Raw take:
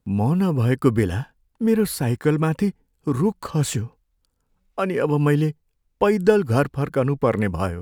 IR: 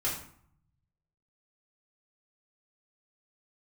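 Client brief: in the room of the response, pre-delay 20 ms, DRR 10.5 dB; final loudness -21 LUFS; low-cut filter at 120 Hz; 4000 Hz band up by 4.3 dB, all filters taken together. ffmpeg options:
-filter_complex "[0:a]highpass=120,equalizer=f=4k:t=o:g=5.5,asplit=2[a][b];[1:a]atrim=start_sample=2205,adelay=20[c];[b][c]afir=irnorm=-1:irlink=0,volume=-16.5dB[d];[a][d]amix=inputs=2:normalize=0,volume=0.5dB"

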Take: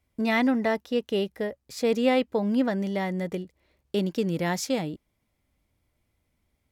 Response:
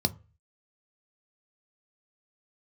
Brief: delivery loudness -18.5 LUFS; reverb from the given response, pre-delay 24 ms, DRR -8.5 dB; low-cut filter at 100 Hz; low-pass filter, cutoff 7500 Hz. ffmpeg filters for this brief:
-filter_complex "[0:a]highpass=100,lowpass=7.5k,asplit=2[a][b];[1:a]atrim=start_sample=2205,adelay=24[c];[b][c]afir=irnorm=-1:irlink=0,volume=1dB[d];[a][d]amix=inputs=2:normalize=0,volume=-7dB"

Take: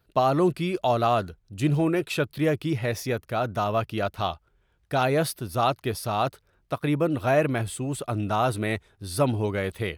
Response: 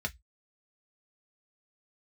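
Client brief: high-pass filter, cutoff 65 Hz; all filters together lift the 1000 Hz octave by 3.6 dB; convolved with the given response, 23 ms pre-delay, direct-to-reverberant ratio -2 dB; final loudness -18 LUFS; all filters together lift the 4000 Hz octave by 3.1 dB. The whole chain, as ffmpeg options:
-filter_complex "[0:a]highpass=65,equalizer=f=1k:t=o:g=5,equalizer=f=4k:t=o:g=3.5,asplit=2[a][b];[1:a]atrim=start_sample=2205,adelay=23[c];[b][c]afir=irnorm=-1:irlink=0,volume=-1.5dB[d];[a][d]amix=inputs=2:normalize=0,volume=2dB"

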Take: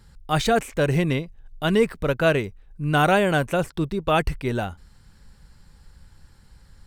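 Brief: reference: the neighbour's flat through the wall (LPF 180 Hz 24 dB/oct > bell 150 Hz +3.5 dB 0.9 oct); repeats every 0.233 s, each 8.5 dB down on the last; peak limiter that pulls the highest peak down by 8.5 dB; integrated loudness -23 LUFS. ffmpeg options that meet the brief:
-af "alimiter=limit=-15dB:level=0:latency=1,lowpass=f=180:w=0.5412,lowpass=f=180:w=1.3066,equalizer=f=150:t=o:w=0.9:g=3.5,aecho=1:1:233|466|699|932:0.376|0.143|0.0543|0.0206,volume=7dB"

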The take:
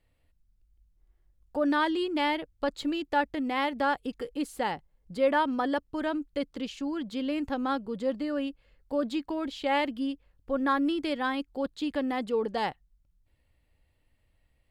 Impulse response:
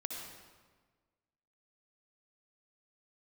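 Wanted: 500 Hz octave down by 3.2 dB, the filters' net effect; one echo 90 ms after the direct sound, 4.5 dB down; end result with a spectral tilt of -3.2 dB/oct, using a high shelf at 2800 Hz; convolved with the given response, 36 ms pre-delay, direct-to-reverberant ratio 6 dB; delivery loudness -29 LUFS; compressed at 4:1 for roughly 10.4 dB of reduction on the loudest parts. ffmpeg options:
-filter_complex "[0:a]equalizer=f=500:t=o:g=-3.5,highshelf=f=2.8k:g=-7,acompressor=threshold=-36dB:ratio=4,aecho=1:1:90:0.596,asplit=2[a][b];[1:a]atrim=start_sample=2205,adelay=36[c];[b][c]afir=irnorm=-1:irlink=0,volume=-6dB[d];[a][d]amix=inputs=2:normalize=0,volume=8dB"

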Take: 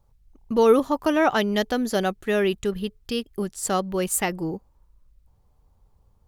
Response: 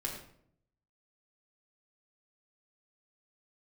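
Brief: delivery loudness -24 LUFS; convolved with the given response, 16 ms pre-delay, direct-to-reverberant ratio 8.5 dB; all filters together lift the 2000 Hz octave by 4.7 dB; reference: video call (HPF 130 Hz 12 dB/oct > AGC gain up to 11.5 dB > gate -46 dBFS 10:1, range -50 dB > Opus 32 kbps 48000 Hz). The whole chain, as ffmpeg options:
-filter_complex "[0:a]equalizer=f=2k:t=o:g=6,asplit=2[a][b];[1:a]atrim=start_sample=2205,adelay=16[c];[b][c]afir=irnorm=-1:irlink=0,volume=-10.5dB[d];[a][d]amix=inputs=2:normalize=0,highpass=130,dynaudnorm=m=11.5dB,agate=range=-50dB:threshold=-46dB:ratio=10,volume=-2dB" -ar 48000 -c:a libopus -b:a 32k

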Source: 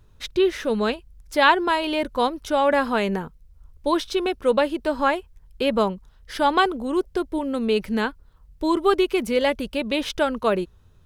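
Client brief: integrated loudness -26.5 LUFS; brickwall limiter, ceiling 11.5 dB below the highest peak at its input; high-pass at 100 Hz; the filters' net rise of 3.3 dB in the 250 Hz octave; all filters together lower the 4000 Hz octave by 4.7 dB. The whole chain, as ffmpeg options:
-af "highpass=100,equalizer=f=250:t=o:g=4.5,equalizer=f=4k:t=o:g=-6.5,volume=-1dB,alimiter=limit=-17.5dB:level=0:latency=1"

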